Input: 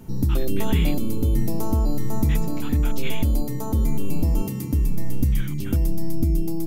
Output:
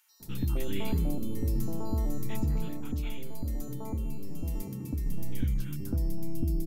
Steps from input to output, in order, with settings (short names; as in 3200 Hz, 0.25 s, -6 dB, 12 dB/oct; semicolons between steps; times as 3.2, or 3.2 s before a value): 2.45–4.86 compressor, threshold -20 dBFS, peak gain reduction 6 dB; bands offset in time highs, lows 0.2 s, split 1400 Hz; gain -8.5 dB